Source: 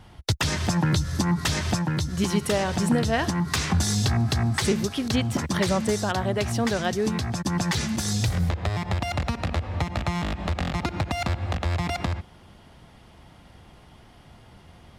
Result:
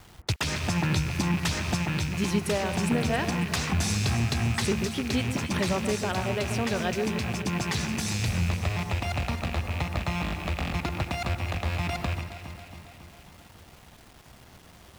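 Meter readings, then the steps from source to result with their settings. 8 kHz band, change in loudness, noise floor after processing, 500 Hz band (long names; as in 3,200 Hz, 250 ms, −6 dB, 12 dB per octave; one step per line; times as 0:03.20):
−3.5 dB, −2.5 dB, −52 dBFS, −3.0 dB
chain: loose part that buzzes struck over −30 dBFS, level −21 dBFS
bit reduction 8 bits
delay that swaps between a low-pass and a high-pass 137 ms, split 1,700 Hz, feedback 78%, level −8 dB
level −4 dB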